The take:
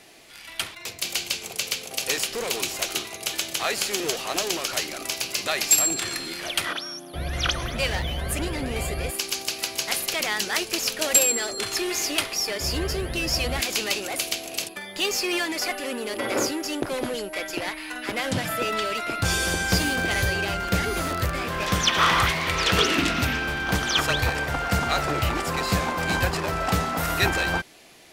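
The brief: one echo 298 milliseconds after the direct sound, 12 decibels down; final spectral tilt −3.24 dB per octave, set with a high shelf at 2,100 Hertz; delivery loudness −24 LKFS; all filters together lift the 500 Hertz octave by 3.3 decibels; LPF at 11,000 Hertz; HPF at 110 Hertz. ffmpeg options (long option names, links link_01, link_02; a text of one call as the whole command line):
ffmpeg -i in.wav -af "highpass=110,lowpass=11000,equalizer=frequency=500:width_type=o:gain=4.5,highshelf=frequency=2100:gain=-5.5,aecho=1:1:298:0.251,volume=2.5dB" out.wav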